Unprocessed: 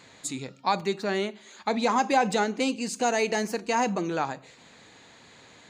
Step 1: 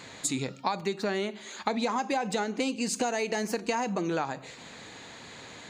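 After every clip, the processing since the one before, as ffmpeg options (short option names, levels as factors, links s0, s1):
-af "acompressor=threshold=0.0251:ratio=12,volume=2.11"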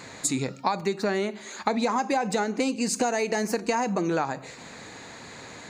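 -af "equalizer=f=3200:t=o:w=0.49:g=-7.5,volume=1.58"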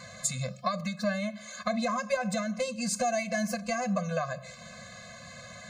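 -af "afftfilt=real='re*eq(mod(floor(b*sr/1024/250),2),0)':imag='im*eq(mod(floor(b*sr/1024/250),2),0)':win_size=1024:overlap=0.75"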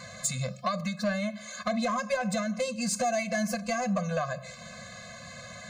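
-af "asoftclip=type=tanh:threshold=0.0841,volume=1.26"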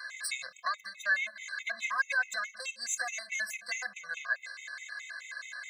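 -af "highpass=f=1700:t=q:w=3.8,afftfilt=real='re*gt(sin(2*PI*4.7*pts/sr)*(1-2*mod(floor(b*sr/1024/2000),2)),0)':imag='im*gt(sin(2*PI*4.7*pts/sr)*(1-2*mod(floor(b*sr/1024/2000),2)),0)':win_size=1024:overlap=0.75"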